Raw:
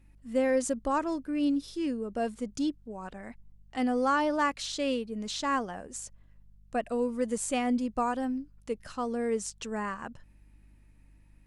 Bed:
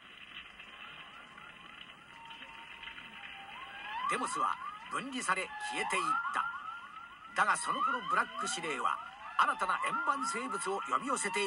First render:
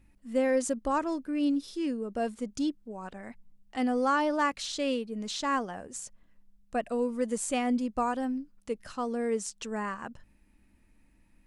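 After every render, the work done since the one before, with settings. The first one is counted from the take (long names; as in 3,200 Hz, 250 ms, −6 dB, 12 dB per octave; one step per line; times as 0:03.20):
hum removal 50 Hz, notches 3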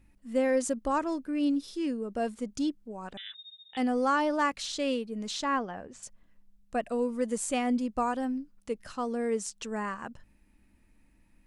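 0:03.17–0:03.77: voice inversion scrambler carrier 3,700 Hz
0:05.44–0:06.03: low-pass filter 3,700 Hz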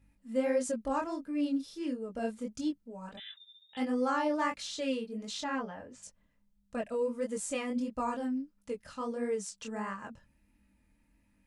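chorus effect 1.5 Hz, delay 19.5 ms, depth 7.6 ms
notch comb filter 370 Hz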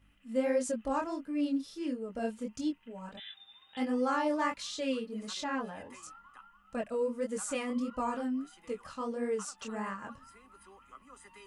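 mix in bed −21 dB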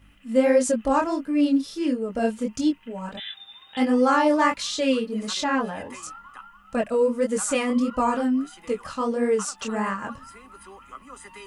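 level +11 dB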